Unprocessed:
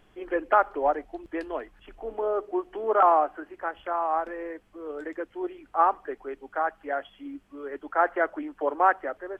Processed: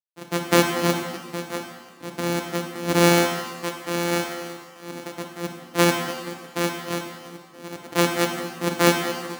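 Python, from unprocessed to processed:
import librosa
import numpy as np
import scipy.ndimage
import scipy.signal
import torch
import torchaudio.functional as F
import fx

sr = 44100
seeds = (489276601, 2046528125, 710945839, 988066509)

y = np.r_[np.sort(x[:len(x) // 256 * 256].reshape(-1, 256), axis=1).ravel(), x[len(x) // 256 * 256:]]
y = np.sign(y) * np.maximum(np.abs(y) - 10.0 ** (-41.0 / 20.0), 0.0)
y = scipy.signal.sosfilt(scipy.signal.butter(2, 190.0, 'highpass', fs=sr, output='sos'), y)
y = fx.peak_eq(y, sr, hz=250.0, db=10.0, octaves=0.39)
y = fx.rev_shimmer(y, sr, seeds[0], rt60_s=1.2, semitones=7, shimmer_db=-8, drr_db=3.5)
y = y * 10.0 ** (3.0 / 20.0)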